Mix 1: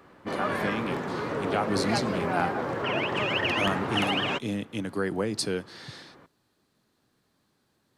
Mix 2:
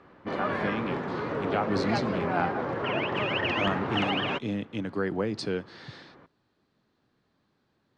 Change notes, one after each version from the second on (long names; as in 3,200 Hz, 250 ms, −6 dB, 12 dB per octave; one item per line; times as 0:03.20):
master: add high-frequency loss of the air 150 metres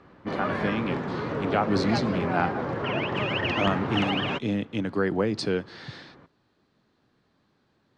speech +4.0 dB
background: add bass and treble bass +5 dB, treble +4 dB